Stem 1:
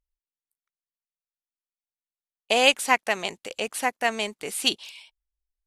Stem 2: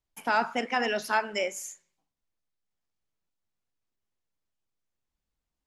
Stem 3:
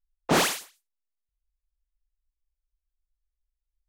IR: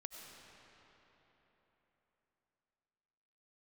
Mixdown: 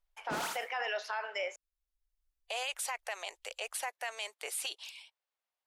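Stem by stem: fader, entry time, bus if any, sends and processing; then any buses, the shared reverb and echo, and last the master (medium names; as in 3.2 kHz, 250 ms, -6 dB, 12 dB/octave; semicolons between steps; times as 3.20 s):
-3.0 dB, 0.00 s, bus A, no send, harmonic-percussive split harmonic -6 dB
0.0 dB, 0.00 s, muted 1.56–3.49 s, bus A, no send, low-pass 4 kHz 12 dB/octave
-1.0 dB, 0.00 s, no bus, no send, hum notches 60/120/180 Hz; auto duck -13 dB, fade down 0.70 s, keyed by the second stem
bus A: 0.0 dB, inverse Chebyshev high-pass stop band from 160 Hz, stop band 60 dB; peak limiter -20 dBFS, peak gain reduction 11 dB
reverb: none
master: peak limiter -26.5 dBFS, peak gain reduction 11.5 dB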